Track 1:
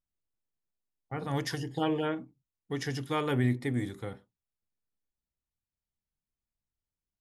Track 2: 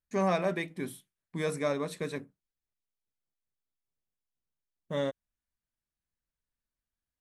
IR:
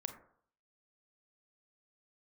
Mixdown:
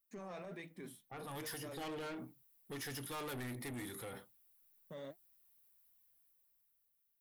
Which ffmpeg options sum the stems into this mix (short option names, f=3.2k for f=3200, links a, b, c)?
-filter_complex "[0:a]aexciter=amount=6.8:drive=4.3:freq=9.8k,dynaudnorm=f=310:g=9:m=12dB,lowshelf=f=370:g=-12,volume=-1dB[a];[1:a]highpass=f=130:w=0.5412,highpass=f=130:w=1.3066,flanger=delay=0.6:depth=9.2:regen=64:speed=1.5:shape=triangular,volume=-5.5dB[b];[a][b]amix=inputs=2:normalize=0,asoftclip=type=tanh:threshold=-31dB,alimiter=level_in=17dB:limit=-24dB:level=0:latency=1:release=14,volume=-17dB"